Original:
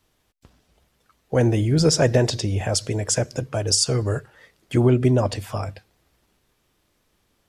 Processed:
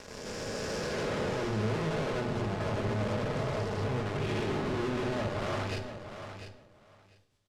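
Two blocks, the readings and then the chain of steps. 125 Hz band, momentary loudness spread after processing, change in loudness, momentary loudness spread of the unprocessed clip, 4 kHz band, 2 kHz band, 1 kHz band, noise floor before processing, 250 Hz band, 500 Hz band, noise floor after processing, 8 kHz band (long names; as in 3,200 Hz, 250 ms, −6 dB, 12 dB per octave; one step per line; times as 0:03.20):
−12.0 dB, 10 LU, −12.0 dB, 11 LU, −13.5 dB, −3.0 dB, −2.5 dB, −68 dBFS, −10.0 dB, −9.0 dB, −61 dBFS, −21.0 dB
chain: peak hold with a rise ahead of every peak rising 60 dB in 2.40 s
mains-hum notches 60/120/180/240 Hz
treble cut that deepens with the level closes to 580 Hz, closed at −15 dBFS
high-shelf EQ 3,200 Hz +12 dB
leveller curve on the samples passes 5
downward compressor, threshold −11 dBFS, peak gain reduction 4.5 dB
amplitude tremolo 6.8 Hz, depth 49%
tube saturation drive 30 dB, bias 0.7
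brickwall limiter −30 dBFS, peak gain reduction 4 dB
high-frequency loss of the air 67 metres
repeating echo 696 ms, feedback 16%, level −9.5 dB
rectangular room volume 1,900 cubic metres, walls furnished, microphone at 1.4 metres
level −1.5 dB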